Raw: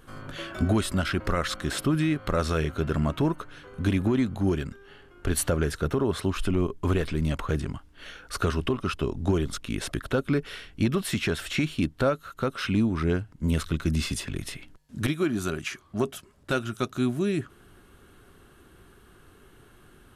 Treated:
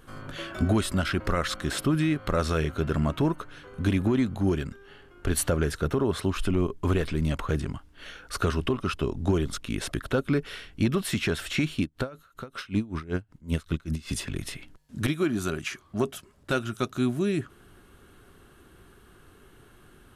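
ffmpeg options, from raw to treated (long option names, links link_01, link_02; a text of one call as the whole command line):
ffmpeg -i in.wav -filter_complex "[0:a]asettb=1/sr,asplit=3[link_01][link_02][link_03];[link_01]atrim=end=11.814[link_04];[link_02]atrim=start=11.81:end=14.09,asetpts=PTS-STARTPTS,afade=type=in:duration=0.004:curve=qsin,afade=type=out:start_time=2.276:duration=0.004:curve=qsin,aeval=exprs='val(0)*pow(10,-21*(0.5-0.5*cos(2*PI*5.2*n/s))/20)':channel_layout=same[link_05];[link_03]atrim=start=14.086[link_06];[link_04][link_05]acrossfade=duration=0.004:curve1=hsin:curve2=qsin[link_07];[link_07][link_06]acrossfade=duration=0.004:curve1=qsin:curve2=hsin" out.wav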